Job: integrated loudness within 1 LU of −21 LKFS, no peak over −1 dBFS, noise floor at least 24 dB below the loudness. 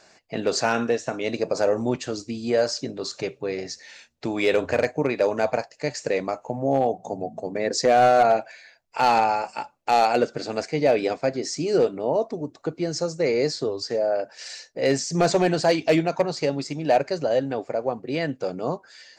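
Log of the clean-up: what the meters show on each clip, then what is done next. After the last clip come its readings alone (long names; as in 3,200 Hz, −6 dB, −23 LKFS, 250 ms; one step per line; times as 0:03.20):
share of clipped samples 0.4%; peaks flattened at −11.5 dBFS; integrated loudness −24.0 LKFS; sample peak −11.5 dBFS; target loudness −21.0 LKFS
→ clipped peaks rebuilt −11.5 dBFS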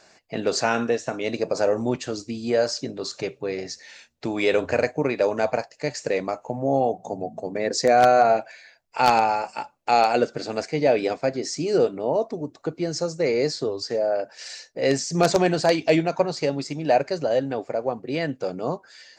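share of clipped samples 0.0%; integrated loudness −23.5 LKFS; sample peak −2.5 dBFS; target loudness −21.0 LKFS
→ level +2.5 dB
brickwall limiter −1 dBFS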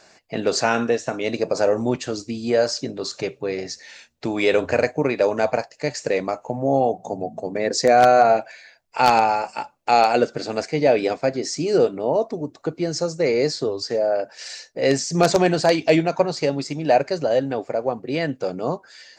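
integrated loudness −21.0 LKFS; sample peak −1.0 dBFS; background noise floor −55 dBFS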